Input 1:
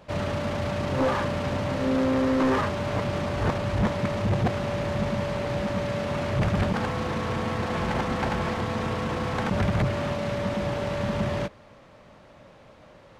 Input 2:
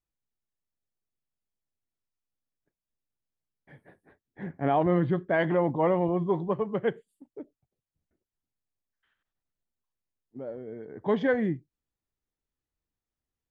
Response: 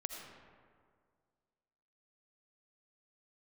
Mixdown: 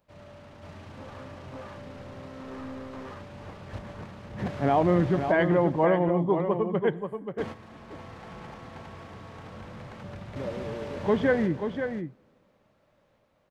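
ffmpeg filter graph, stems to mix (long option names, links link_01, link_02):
-filter_complex "[0:a]volume=-12.5dB,asplit=3[link_01][link_02][link_03];[link_01]atrim=end=5.32,asetpts=PTS-STARTPTS,afade=type=out:start_time=5.316:duration=0.004:curve=hsin[link_04];[link_02]atrim=start=5.32:end=7.38,asetpts=PTS-STARTPTS,volume=0[link_05];[link_03]atrim=start=7.38,asetpts=PTS-STARTPTS,afade=type=in:duration=0.004:curve=hsin[link_06];[link_04][link_05][link_06]concat=n=3:v=0:a=1,asplit=3[link_07][link_08][link_09];[link_08]volume=-7dB[link_10];[link_09]volume=-6dB[link_11];[1:a]volume=0.5dB,asplit=4[link_12][link_13][link_14][link_15];[link_13]volume=-15dB[link_16];[link_14]volume=-6.5dB[link_17];[link_15]apad=whole_len=581839[link_18];[link_07][link_18]sidechaingate=range=-33dB:threshold=-50dB:ratio=16:detection=peak[link_19];[2:a]atrim=start_sample=2205[link_20];[link_10][link_16]amix=inputs=2:normalize=0[link_21];[link_21][link_20]afir=irnorm=-1:irlink=0[link_22];[link_11][link_17]amix=inputs=2:normalize=0,aecho=0:1:533:1[link_23];[link_19][link_12][link_22][link_23]amix=inputs=4:normalize=0"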